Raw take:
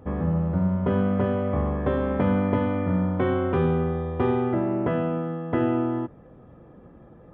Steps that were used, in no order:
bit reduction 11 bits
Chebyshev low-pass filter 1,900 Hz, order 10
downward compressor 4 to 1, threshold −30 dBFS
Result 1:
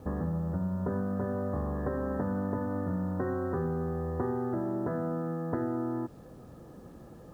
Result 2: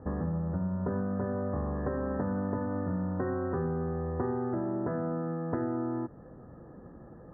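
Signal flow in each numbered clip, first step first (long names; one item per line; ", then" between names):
Chebyshev low-pass filter, then downward compressor, then bit reduction
bit reduction, then Chebyshev low-pass filter, then downward compressor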